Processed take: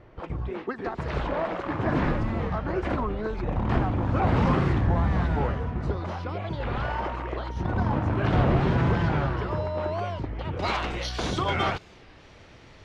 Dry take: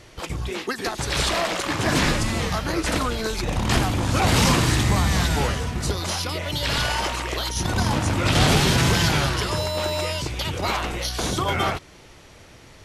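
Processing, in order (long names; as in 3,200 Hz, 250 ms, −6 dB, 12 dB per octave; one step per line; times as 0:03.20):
low-pass filter 1,300 Hz 12 dB per octave, from 0:10.59 4,200 Hz
wow of a warped record 33 1/3 rpm, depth 250 cents
level −2.5 dB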